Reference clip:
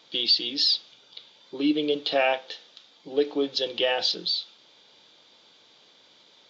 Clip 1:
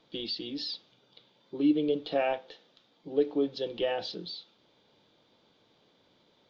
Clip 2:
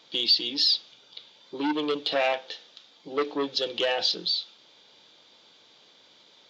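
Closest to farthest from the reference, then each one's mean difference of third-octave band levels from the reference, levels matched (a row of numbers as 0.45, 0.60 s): 2, 1; 1.5, 4.0 dB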